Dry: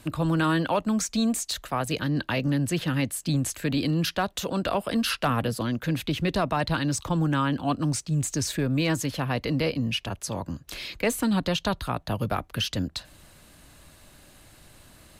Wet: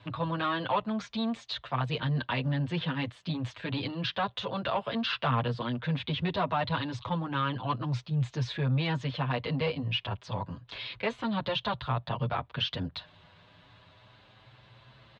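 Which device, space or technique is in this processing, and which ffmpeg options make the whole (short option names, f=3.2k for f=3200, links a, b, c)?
barber-pole flanger into a guitar amplifier: -filter_complex "[0:a]asplit=2[a][b];[b]adelay=7.6,afreqshift=0.29[c];[a][c]amix=inputs=2:normalize=1,asoftclip=type=tanh:threshold=-20.5dB,highpass=92,equalizer=f=120:t=q:w=4:g=8,equalizer=f=210:t=q:w=4:g=-5,equalizer=f=310:t=q:w=4:g=-9,equalizer=f=990:t=q:w=4:g=6,equalizer=f=3.5k:t=q:w=4:g=6,lowpass=f=3.8k:w=0.5412,lowpass=f=3.8k:w=1.3066"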